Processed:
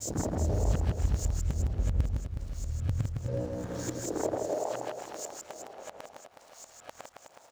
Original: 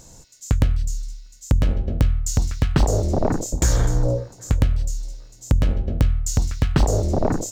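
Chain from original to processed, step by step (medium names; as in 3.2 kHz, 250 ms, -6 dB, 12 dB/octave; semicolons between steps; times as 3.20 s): reverse the whole clip; compression 4:1, threshold -26 dBFS, peak gain reduction 12.5 dB; hysteresis with a dead band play -39 dBFS; high-pass sweep 61 Hz -> 710 Hz, 2.47–4.69 s; on a send: reverse bouncing-ball echo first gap 160 ms, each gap 1.3×, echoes 5; on the sum: trim -4.5 dB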